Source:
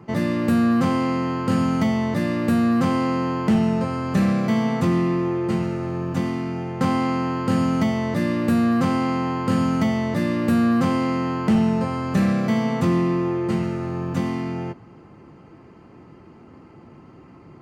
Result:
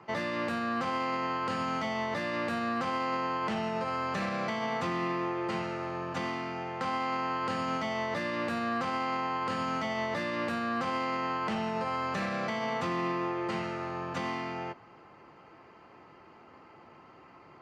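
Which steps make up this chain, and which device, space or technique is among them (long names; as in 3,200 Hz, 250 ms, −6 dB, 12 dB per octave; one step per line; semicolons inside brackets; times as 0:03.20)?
DJ mixer with the lows and highs turned down (three-way crossover with the lows and the highs turned down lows −16 dB, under 520 Hz, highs −19 dB, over 6,300 Hz; brickwall limiter −23.5 dBFS, peak gain reduction 7 dB)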